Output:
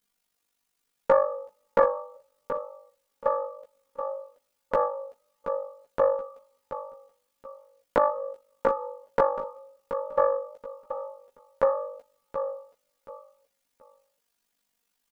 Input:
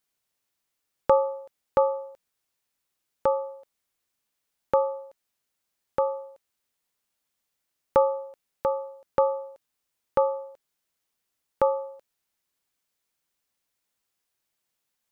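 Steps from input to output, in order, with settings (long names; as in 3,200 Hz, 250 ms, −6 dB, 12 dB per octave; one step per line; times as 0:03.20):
comb filter 4.2 ms, depth 81%
in parallel at +2.5 dB: brickwall limiter −15 dBFS, peak gain reduction 8 dB
on the sum: coupled-rooms reverb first 0.43 s, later 2.3 s, from −27 dB, DRR 17.5 dB
amplitude modulation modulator 49 Hz, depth 90%
on a send: repeating echo 728 ms, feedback 26%, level −9.5 dB
on the sum: multi-voice chorus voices 4, 0.15 Hz, delay 15 ms, depth 4.6 ms
highs frequency-modulated by the lows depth 0.37 ms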